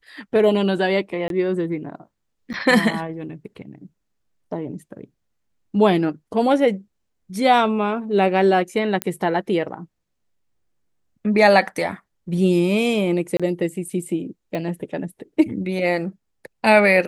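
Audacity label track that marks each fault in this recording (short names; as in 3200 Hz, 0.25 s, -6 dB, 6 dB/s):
1.280000	1.300000	gap 22 ms
2.530000	2.540000	gap 9.2 ms
9.020000	9.020000	pop -6 dBFS
13.370000	13.400000	gap 26 ms
14.550000	14.550000	pop -16 dBFS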